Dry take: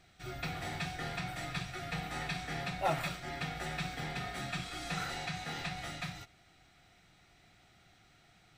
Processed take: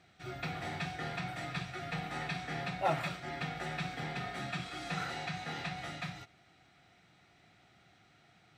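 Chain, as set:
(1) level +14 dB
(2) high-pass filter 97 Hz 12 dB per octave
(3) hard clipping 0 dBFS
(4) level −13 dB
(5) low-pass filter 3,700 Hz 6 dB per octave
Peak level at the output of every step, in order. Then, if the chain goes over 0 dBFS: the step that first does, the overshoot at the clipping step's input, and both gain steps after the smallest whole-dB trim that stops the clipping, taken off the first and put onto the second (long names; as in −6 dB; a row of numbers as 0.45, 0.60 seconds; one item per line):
−5.5, −5.5, −5.5, −18.5, −19.0 dBFS
no step passes full scale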